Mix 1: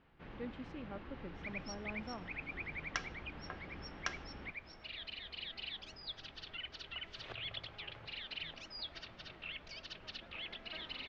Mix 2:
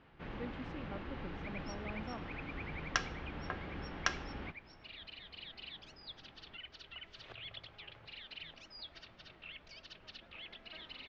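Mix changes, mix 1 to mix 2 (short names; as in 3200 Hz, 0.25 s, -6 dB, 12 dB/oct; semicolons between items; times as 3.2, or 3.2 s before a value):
first sound +6.0 dB; second sound -4.5 dB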